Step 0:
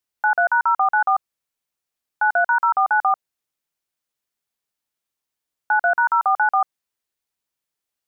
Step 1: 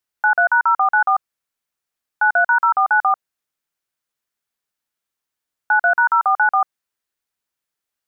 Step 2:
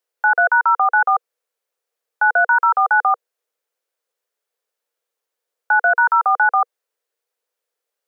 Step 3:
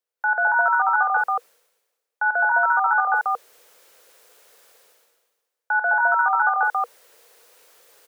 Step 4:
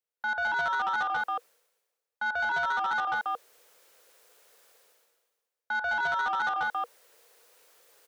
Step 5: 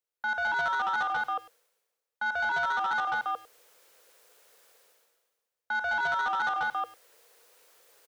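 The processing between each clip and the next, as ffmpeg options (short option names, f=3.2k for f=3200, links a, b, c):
-af "equalizer=f=1.5k:w=1.7:g=4"
-filter_complex "[0:a]acrossover=split=790|940[a][b][c];[a]alimiter=level_in=4dB:limit=-24dB:level=0:latency=1,volume=-4dB[d];[d][b][c]amix=inputs=3:normalize=0,highpass=f=480:t=q:w=5.9"
-af "areverse,acompressor=mode=upward:threshold=-25dB:ratio=2.5,areverse,aecho=1:1:46.65|209.9:0.355|1,volume=-7dB"
-af "aeval=exprs='0.376*(cos(1*acos(clip(val(0)/0.376,-1,1)))-cos(1*PI/2))+0.015*(cos(5*acos(clip(val(0)/0.376,-1,1)))-cos(5*PI/2))':c=same,asoftclip=type=tanh:threshold=-14.5dB,volume=-8dB"
-filter_complex "[0:a]asplit=2[a][b];[b]adelay=100,highpass=300,lowpass=3.4k,asoftclip=type=hard:threshold=-32.5dB,volume=-17dB[c];[a][c]amix=inputs=2:normalize=0"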